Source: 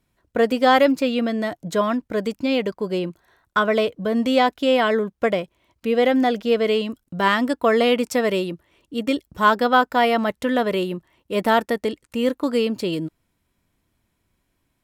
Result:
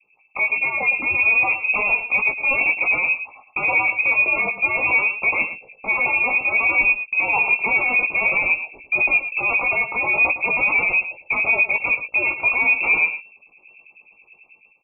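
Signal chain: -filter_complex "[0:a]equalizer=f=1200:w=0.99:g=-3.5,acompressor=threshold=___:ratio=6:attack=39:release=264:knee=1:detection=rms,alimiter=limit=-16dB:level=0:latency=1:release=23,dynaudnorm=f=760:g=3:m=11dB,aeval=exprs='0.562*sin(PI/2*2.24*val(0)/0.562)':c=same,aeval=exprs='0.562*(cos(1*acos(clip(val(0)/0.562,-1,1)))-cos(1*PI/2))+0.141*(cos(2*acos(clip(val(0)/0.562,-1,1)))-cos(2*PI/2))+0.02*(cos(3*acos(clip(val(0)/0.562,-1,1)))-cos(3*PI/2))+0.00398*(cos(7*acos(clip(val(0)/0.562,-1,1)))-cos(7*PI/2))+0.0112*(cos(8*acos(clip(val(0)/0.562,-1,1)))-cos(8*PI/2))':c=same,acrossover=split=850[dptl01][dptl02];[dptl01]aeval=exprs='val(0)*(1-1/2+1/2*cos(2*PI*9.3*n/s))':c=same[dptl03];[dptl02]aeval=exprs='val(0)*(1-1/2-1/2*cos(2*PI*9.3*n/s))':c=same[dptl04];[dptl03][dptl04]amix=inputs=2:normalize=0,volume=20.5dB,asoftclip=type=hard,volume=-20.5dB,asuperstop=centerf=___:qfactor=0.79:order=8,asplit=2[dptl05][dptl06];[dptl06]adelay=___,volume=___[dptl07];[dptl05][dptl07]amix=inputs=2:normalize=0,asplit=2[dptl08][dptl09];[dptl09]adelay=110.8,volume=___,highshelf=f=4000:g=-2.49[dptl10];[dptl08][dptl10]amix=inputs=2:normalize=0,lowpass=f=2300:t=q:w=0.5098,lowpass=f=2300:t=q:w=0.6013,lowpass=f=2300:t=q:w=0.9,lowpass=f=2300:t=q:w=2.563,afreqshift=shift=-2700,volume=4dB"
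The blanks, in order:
-20dB, 930, 18, -6dB, -11dB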